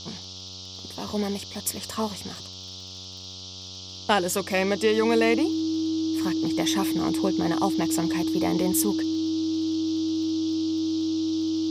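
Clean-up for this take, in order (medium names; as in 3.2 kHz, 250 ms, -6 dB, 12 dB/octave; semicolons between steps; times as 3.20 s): de-click; de-hum 93.1 Hz, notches 15; band-stop 320 Hz, Q 30; noise print and reduce 30 dB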